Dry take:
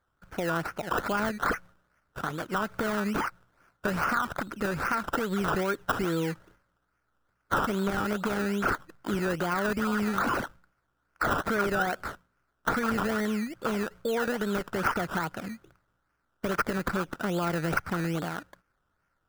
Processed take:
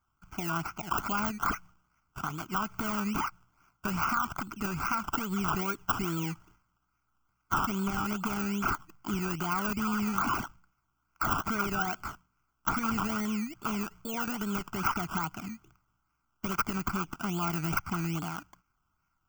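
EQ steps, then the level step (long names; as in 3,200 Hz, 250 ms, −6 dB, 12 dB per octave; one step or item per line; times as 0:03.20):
high-shelf EQ 9,000 Hz +10 dB
phaser with its sweep stopped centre 2,600 Hz, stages 8
0.0 dB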